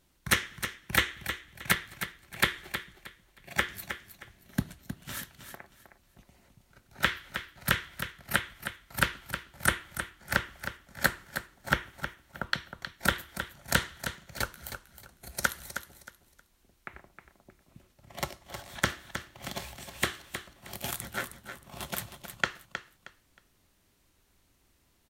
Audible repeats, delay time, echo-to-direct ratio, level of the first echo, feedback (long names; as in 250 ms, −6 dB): 3, 314 ms, −9.0 dB, −9.5 dB, 25%